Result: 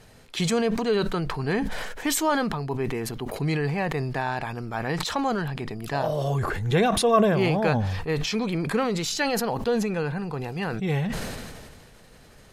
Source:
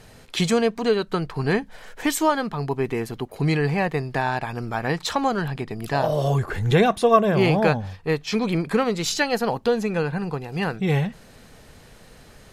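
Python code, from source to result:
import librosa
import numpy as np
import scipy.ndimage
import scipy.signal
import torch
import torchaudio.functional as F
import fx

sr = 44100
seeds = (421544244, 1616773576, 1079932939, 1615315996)

y = fx.sustainer(x, sr, db_per_s=30.0)
y = y * librosa.db_to_amplitude(-4.5)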